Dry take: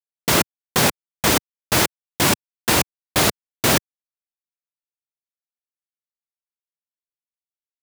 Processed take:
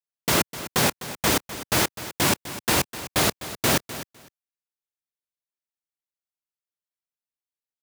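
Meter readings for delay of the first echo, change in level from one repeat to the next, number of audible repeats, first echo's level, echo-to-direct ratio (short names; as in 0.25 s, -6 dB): 0.253 s, -16.0 dB, 2, -14.0 dB, -14.0 dB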